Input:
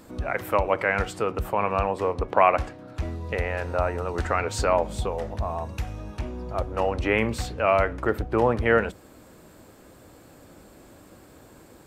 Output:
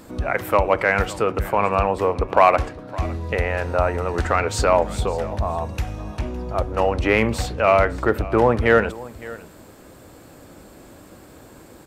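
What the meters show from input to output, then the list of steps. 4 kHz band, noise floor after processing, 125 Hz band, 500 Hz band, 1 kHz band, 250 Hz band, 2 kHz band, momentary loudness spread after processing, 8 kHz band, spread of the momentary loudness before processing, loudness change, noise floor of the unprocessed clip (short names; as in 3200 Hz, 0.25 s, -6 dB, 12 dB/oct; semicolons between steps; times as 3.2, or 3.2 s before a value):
+5.0 dB, -46 dBFS, +5.0 dB, +5.0 dB, +5.0 dB, +5.0 dB, +5.0 dB, 13 LU, +5.0 dB, 12 LU, +5.0 dB, -51 dBFS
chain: in parallel at -4.5 dB: hard clip -12.5 dBFS, distortion -17 dB; on the sum: echo 0.561 s -19 dB; gain +1 dB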